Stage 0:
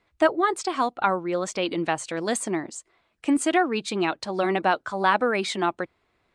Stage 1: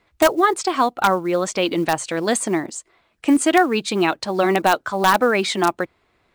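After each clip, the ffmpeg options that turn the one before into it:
ffmpeg -i in.wav -filter_complex "[0:a]asplit=2[link_01][link_02];[link_02]aeval=exprs='(mod(3.55*val(0)+1,2)-1)/3.55':channel_layout=same,volume=-6dB[link_03];[link_01][link_03]amix=inputs=2:normalize=0,acrusher=bits=8:mode=log:mix=0:aa=0.000001,volume=2.5dB" out.wav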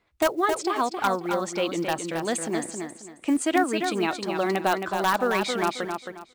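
ffmpeg -i in.wav -af "aecho=1:1:269|538|807|1076:0.501|0.14|0.0393|0.011,volume=-7.5dB" out.wav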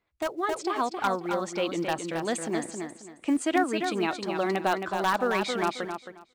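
ffmpeg -i in.wav -af "highshelf=frequency=10000:gain=-9,dynaudnorm=framelen=110:gausssize=9:maxgain=7dB,volume=-8.5dB" out.wav

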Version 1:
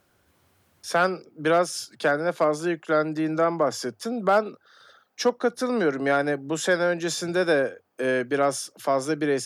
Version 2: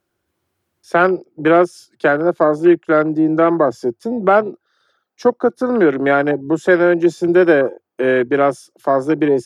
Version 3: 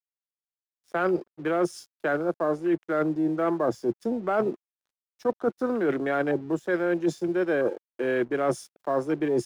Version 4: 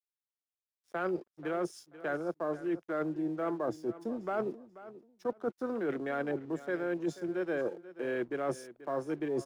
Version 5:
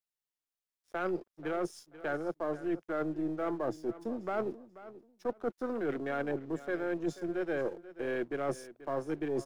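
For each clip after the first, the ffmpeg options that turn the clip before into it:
ffmpeg -i in.wav -af "afwtdn=0.0282,equalizer=frequency=350:width_type=o:width=0.25:gain=9,volume=7.5dB" out.wav
ffmpeg -i in.wav -af "areverse,acompressor=threshold=-22dB:ratio=8,areverse,aeval=exprs='sgn(val(0))*max(abs(val(0))-0.00224,0)':channel_layout=same" out.wav
ffmpeg -i in.wav -af "aecho=1:1:485|970:0.158|0.0349,volume=-8.5dB" out.wav
ffmpeg -i in.wav -af "aeval=exprs='if(lt(val(0),0),0.708*val(0),val(0))':channel_layout=same,volume=1dB" out.wav

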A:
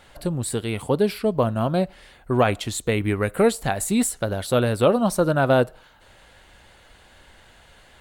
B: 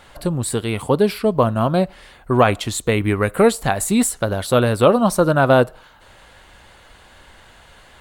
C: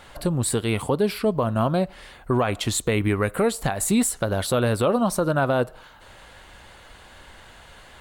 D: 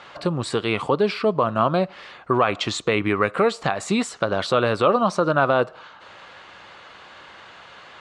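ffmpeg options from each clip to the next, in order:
ffmpeg -i in.wav -af "equalizer=frequency=1100:width_type=o:width=0.56:gain=4,volume=4dB" out.wav
ffmpeg -i in.wav -af "alimiter=limit=-12dB:level=0:latency=1:release=193" out.wav
ffmpeg -i in.wav -af "highpass=170,equalizer=frequency=240:width_type=q:width=4:gain=-5,equalizer=frequency=1200:width_type=q:width=4:gain=7,equalizer=frequency=2500:width_type=q:width=4:gain=3,lowpass=frequency=5900:width=0.5412,lowpass=frequency=5900:width=1.3066,volume=2.5dB" out.wav

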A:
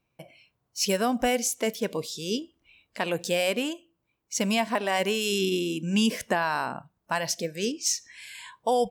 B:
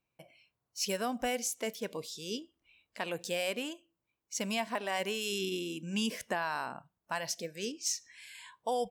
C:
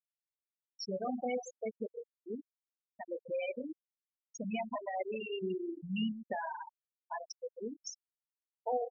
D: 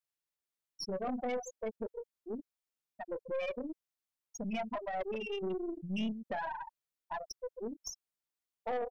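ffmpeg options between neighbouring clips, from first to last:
ffmpeg -i in.wav -af "lowshelf=frequency=450:gain=-4,volume=-7dB" out.wav
ffmpeg -i in.wav -filter_complex "[0:a]asplit=2[link_01][link_02];[link_02]acompressor=threshold=-42dB:ratio=6,volume=0dB[link_03];[link_01][link_03]amix=inputs=2:normalize=0,aecho=1:1:32.07|137:0.447|0.398,afftfilt=real='re*gte(hypot(re,im),0.126)':imag='im*gte(hypot(re,im),0.126)':win_size=1024:overlap=0.75,volume=-4dB" out.wav
ffmpeg -i in.wav -af "aeval=exprs='(tanh(44.7*val(0)+0.35)-tanh(0.35))/44.7':channel_layout=same,volume=3dB" out.wav

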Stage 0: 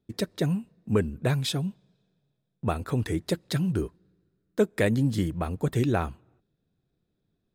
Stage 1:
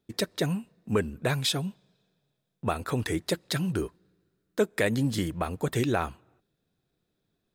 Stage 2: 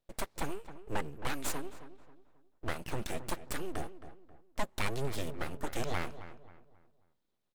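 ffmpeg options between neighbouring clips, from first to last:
ffmpeg -i in.wav -filter_complex "[0:a]lowshelf=frequency=380:gain=-9.5,asplit=2[link_01][link_02];[link_02]alimiter=limit=-22dB:level=0:latency=1:release=91,volume=1dB[link_03];[link_01][link_03]amix=inputs=2:normalize=0,volume=-1.5dB" out.wav
ffmpeg -i in.wav -filter_complex "[0:a]aeval=exprs='abs(val(0))':channel_layout=same,asplit=2[link_01][link_02];[link_02]adelay=268,lowpass=frequency=2100:poles=1,volume=-12.5dB,asplit=2[link_03][link_04];[link_04]adelay=268,lowpass=frequency=2100:poles=1,volume=0.38,asplit=2[link_05][link_06];[link_06]adelay=268,lowpass=frequency=2100:poles=1,volume=0.38,asplit=2[link_07][link_08];[link_08]adelay=268,lowpass=frequency=2100:poles=1,volume=0.38[link_09];[link_01][link_03][link_05][link_07][link_09]amix=inputs=5:normalize=0,volume=-5.5dB" out.wav

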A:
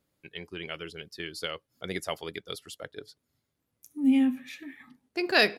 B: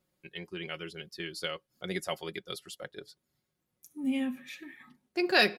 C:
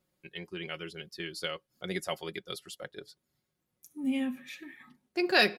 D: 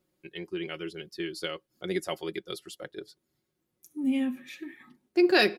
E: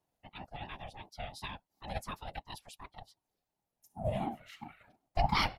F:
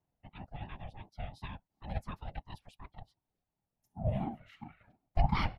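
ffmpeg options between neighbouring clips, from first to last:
ffmpeg -i in.wav -af "aecho=1:1:5.5:0.56,volume=-2.5dB" out.wav
ffmpeg -i in.wav -af anull out.wav
ffmpeg -i in.wav -af "equalizer=frequency=340:width_type=o:width=0.57:gain=9" out.wav
ffmpeg -i in.wav -af "afftfilt=real='hypot(re,im)*cos(2*PI*random(0))':imag='hypot(re,im)*sin(2*PI*random(1))':win_size=512:overlap=0.75,aeval=exprs='val(0)*sin(2*PI*440*n/s+440*0.2/2.8*sin(2*PI*2.8*n/s))':channel_layout=same,volume=1dB" out.wav
ffmpeg -i in.wav -af "bass=frequency=250:gain=9,treble=frequency=4000:gain=-12,volume=-4dB" out.wav

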